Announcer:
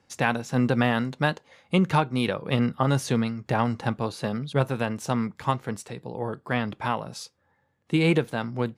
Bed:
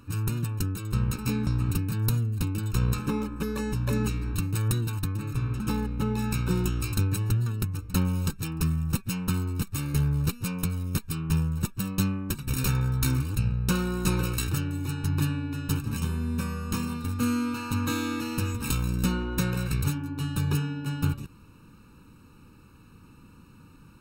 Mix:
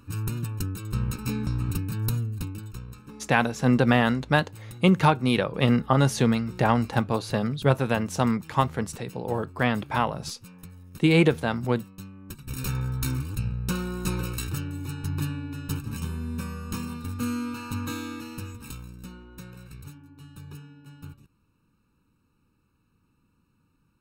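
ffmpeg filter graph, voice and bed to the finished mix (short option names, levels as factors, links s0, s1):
-filter_complex "[0:a]adelay=3100,volume=1.33[s0];[1:a]volume=3.98,afade=t=out:st=2.2:d=0.64:silence=0.177828,afade=t=in:st=12.12:d=0.66:silence=0.211349,afade=t=out:st=17.67:d=1.29:silence=0.211349[s1];[s0][s1]amix=inputs=2:normalize=0"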